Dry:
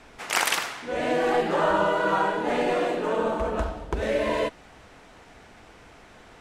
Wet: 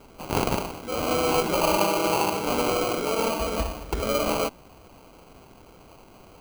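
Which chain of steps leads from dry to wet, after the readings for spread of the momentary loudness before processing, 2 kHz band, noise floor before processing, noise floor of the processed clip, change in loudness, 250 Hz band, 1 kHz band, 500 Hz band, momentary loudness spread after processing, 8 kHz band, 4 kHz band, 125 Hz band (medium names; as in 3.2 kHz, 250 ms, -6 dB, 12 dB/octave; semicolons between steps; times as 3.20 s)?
7 LU, -4.0 dB, -51 dBFS, -51 dBFS, 0.0 dB, +1.5 dB, -0.5 dB, -0.5 dB, 8 LU, +3.5 dB, +2.5 dB, +3.5 dB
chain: sample-rate reducer 1.8 kHz, jitter 0%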